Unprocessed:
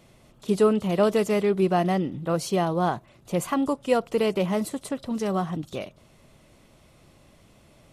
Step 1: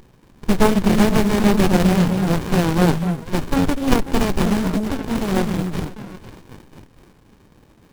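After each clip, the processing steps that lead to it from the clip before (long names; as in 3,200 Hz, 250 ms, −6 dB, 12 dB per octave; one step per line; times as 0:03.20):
spectral envelope flattened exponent 0.3
echo through a band-pass that steps 248 ms, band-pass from 200 Hz, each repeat 1.4 octaves, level −2.5 dB
windowed peak hold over 65 samples
level +9 dB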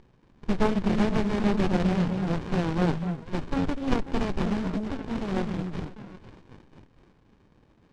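high-frequency loss of the air 110 metres
level −8.5 dB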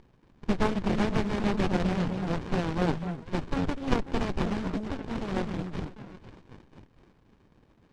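harmonic and percussive parts rebalanced percussive +6 dB
level −4.5 dB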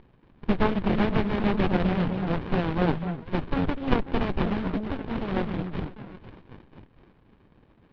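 low-pass filter 3,800 Hz 24 dB per octave
level +3 dB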